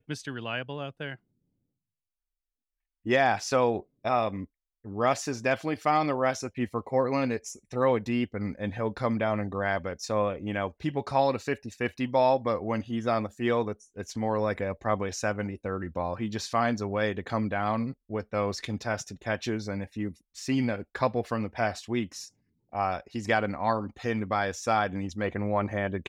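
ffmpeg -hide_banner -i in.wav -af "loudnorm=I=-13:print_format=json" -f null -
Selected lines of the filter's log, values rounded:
"input_i" : "-29.3",
"input_tp" : "-11.1",
"input_lra" : "3.6",
"input_thresh" : "-39.5",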